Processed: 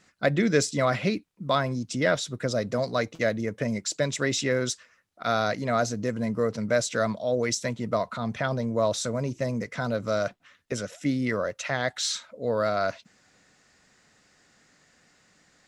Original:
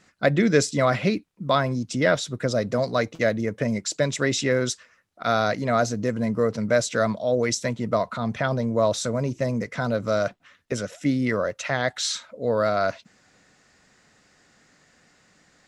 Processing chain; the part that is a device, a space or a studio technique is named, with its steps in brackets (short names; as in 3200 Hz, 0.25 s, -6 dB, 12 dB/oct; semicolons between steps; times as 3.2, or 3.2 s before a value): exciter from parts (in parallel at -9 dB: HPF 2700 Hz 6 dB/oct + soft clip -22 dBFS, distortion -17 dB); on the sum: gain -3.5 dB